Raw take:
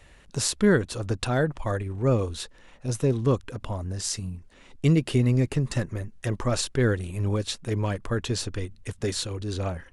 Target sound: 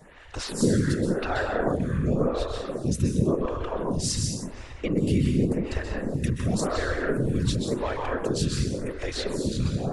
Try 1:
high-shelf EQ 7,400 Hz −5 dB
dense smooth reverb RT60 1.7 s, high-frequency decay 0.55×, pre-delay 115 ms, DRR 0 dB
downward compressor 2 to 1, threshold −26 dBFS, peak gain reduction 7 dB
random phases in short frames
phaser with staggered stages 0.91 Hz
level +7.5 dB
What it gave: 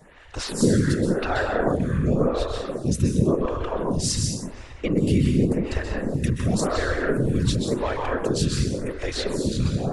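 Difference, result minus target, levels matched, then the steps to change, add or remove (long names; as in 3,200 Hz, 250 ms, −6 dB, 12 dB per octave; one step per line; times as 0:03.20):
downward compressor: peak gain reduction −3 dB
change: downward compressor 2 to 1, threshold −32 dBFS, peak gain reduction 10 dB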